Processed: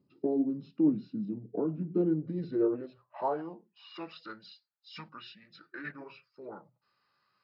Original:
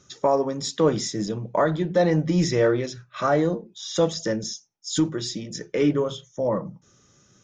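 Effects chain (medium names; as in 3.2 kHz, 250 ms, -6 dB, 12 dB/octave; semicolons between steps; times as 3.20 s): formant shift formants -5 st; band-pass sweep 270 Hz -> 1.4 kHz, 1.95–4.06 s; trim -3 dB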